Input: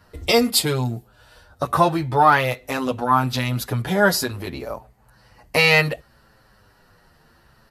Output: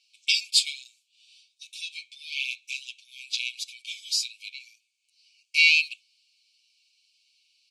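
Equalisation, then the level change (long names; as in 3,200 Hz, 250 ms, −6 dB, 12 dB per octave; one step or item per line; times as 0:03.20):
linear-phase brick-wall high-pass 2,200 Hz
low-pass filter 7,800 Hz 24 dB per octave
0.0 dB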